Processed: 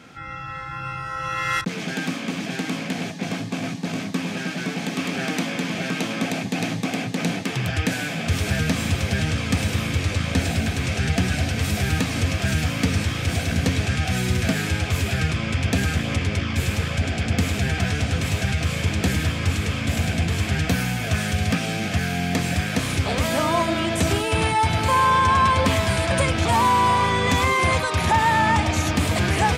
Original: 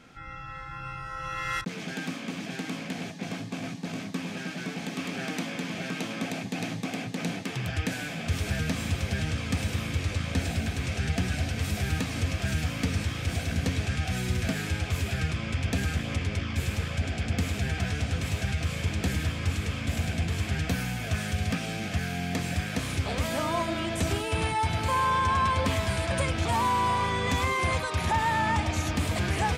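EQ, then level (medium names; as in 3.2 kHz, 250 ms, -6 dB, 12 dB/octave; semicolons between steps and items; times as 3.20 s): high-pass 73 Hz; +7.5 dB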